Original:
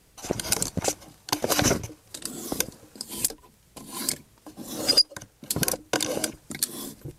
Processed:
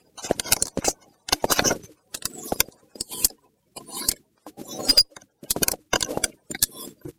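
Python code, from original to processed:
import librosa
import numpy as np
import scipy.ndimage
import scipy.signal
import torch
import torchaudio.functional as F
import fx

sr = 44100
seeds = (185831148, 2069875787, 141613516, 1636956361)

p1 = fx.spec_quant(x, sr, step_db=30)
p2 = fx.highpass(p1, sr, hz=200.0, slope=6)
p3 = fx.rider(p2, sr, range_db=3, speed_s=2.0)
p4 = p2 + F.gain(torch.from_numpy(p3), 0.0).numpy()
p5 = fx.cheby_harmonics(p4, sr, harmonics=(8,), levels_db=(-24,), full_scale_db=0.5)
p6 = fx.transient(p5, sr, attack_db=5, sustain_db=-6)
y = F.gain(torch.from_numpy(p6), -6.0).numpy()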